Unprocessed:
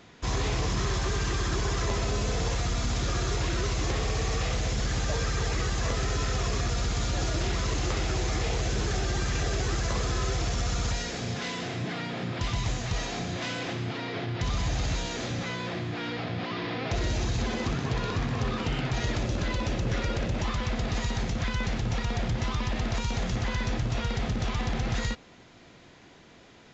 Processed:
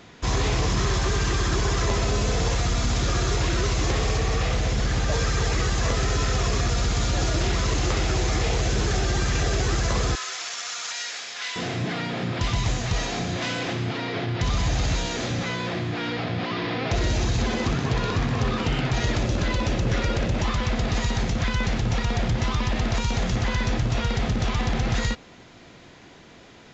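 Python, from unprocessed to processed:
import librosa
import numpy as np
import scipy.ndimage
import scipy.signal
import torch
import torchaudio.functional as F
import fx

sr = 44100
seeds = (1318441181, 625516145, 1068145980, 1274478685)

y = fx.high_shelf(x, sr, hz=6000.0, db=-7.0, at=(4.17, 5.12))
y = fx.highpass(y, sr, hz=1300.0, slope=12, at=(10.15, 11.56))
y = y * 10.0 ** (5.0 / 20.0)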